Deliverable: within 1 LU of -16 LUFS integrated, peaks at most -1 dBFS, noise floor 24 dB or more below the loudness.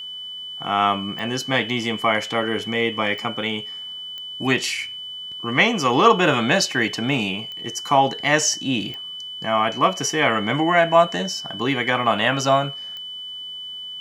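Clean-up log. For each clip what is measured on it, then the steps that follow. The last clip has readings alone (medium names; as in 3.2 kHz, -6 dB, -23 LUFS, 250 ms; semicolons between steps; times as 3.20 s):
clicks found 6; steady tone 3 kHz; tone level -31 dBFS; loudness -21.0 LUFS; peak level -1.0 dBFS; loudness target -16.0 LUFS
-> de-click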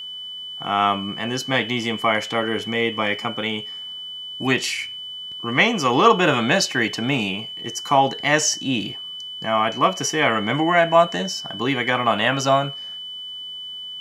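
clicks found 0; steady tone 3 kHz; tone level -31 dBFS
-> band-stop 3 kHz, Q 30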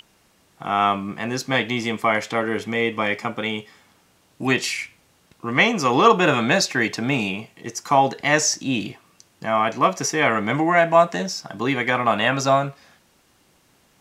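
steady tone not found; loudness -20.5 LUFS; peak level -1.5 dBFS; loudness target -16.0 LUFS
-> trim +4.5 dB; peak limiter -1 dBFS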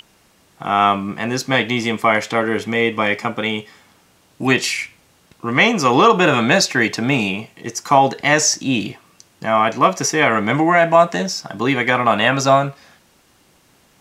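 loudness -16.5 LUFS; peak level -1.0 dBFS; noise floor -56 dBFS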